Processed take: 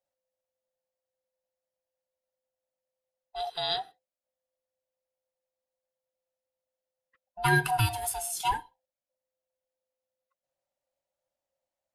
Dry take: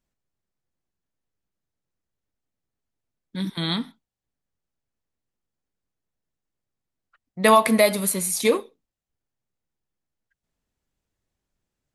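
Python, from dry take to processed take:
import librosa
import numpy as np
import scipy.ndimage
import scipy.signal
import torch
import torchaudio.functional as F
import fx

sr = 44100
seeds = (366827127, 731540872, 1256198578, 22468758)

y = fx.band_swap(x, sr, width_hz=500)
y = fx.graphic_eq(y, sr, hz=(125, 250, 500, 4000), db=(5, -10, 5, 7), at=(3.36, 3.8))
y = y * librosa.db_to_amplitude(-8.5)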